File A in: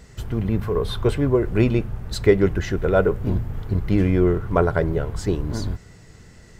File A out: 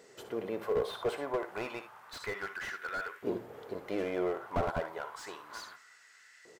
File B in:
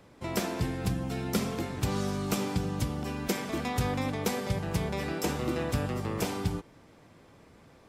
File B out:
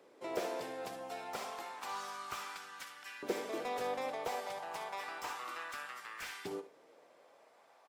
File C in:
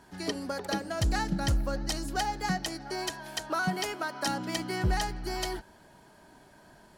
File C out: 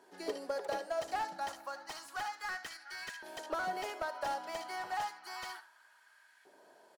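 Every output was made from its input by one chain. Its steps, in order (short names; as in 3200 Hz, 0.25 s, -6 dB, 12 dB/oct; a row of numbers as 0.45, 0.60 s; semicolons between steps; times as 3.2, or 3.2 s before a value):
LFO high-pass saw up 0.31 Hz 400–1800 Hz; early reflections 61 ms -14.5 dB, 76 ms -16.5 dB; slew limiter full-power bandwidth 67 Hz; gain -7.5 dB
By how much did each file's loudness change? -15.0, -9.5, -7.5 LU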